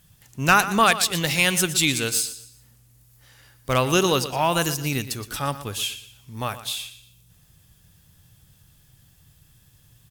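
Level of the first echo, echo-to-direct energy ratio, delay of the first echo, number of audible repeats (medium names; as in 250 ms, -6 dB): -13.5 dB, -13.0 dB, 119 ms, 3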